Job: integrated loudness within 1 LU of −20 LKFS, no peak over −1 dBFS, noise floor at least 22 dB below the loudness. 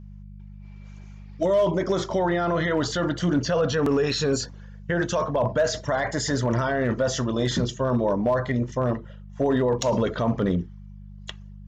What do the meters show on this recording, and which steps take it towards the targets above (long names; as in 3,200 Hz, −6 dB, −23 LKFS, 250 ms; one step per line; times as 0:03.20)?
share of clipped samples 0.4%; peaks flattened at −14.5 dBFS; mains hum 50 Hz; hum harmonics up to 200 Hz; level of the hum −40 dBFS; integrated loudness −24.5 LKFS; sample peak −14.5 dBFS; target loudness −20.0 LKFS
→ clipped peaks rebuilt −14.5 dBFS
hum removal 50 Hz, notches 4
level +4.5 dB